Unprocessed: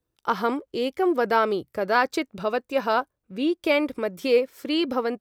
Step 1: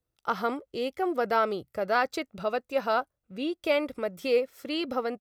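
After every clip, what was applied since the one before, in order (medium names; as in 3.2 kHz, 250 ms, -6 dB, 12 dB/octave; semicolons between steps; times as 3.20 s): comb 1.5 ms, depth 32%; trim -4.5 dB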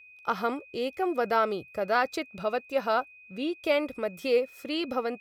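whistle 2.5 kHz -50 dBFS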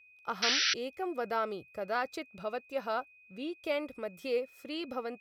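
painted sound noise, 0.42–0.74 s, 1.3–6 kHz -21 dBFS; trim -7.5 dB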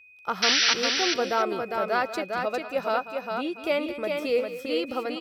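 multi-tap echo 192/404/688 ms -13.5/-4.5/-18.5 dB; trim +7 dB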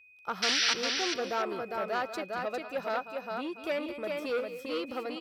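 transformer saturation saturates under 2.1 kHz; trim -5 dB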